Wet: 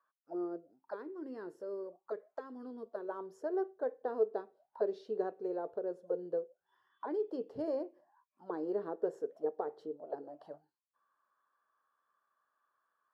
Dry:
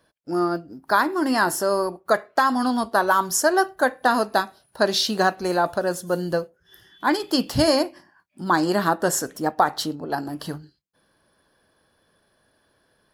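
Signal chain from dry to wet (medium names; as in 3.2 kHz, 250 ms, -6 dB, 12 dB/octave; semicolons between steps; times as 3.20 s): 0.70–3.09 s: peaking EQ 740 Hz -12 dB 1.2 oct; auto-wah 440–1200 Hz, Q 11, down, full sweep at -22.5 dBFS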